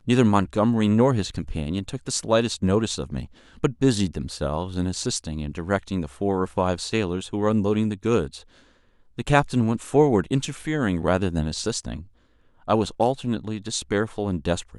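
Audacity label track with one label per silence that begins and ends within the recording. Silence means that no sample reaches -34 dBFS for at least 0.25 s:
3.250000	3.630000	silence
8.380000	9.180000	silence
12.010000	12.680000	silence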